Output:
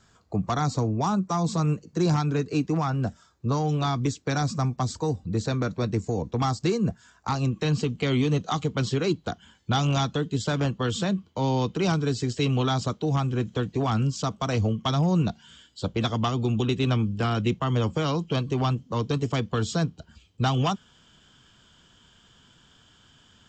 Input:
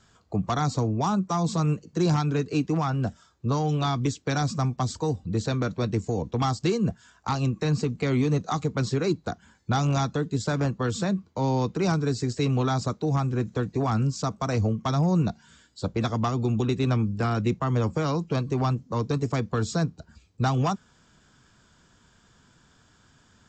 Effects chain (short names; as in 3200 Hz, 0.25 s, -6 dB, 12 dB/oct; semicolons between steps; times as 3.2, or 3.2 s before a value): bell 3100 Hz -2 dB 0.32 oct, from 7.52 s +14.5 dB